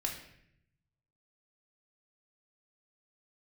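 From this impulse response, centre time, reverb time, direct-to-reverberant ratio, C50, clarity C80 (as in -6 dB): 28 ms, 0.70 s, -0.5 dB, 6.5 dB, 9.5 dB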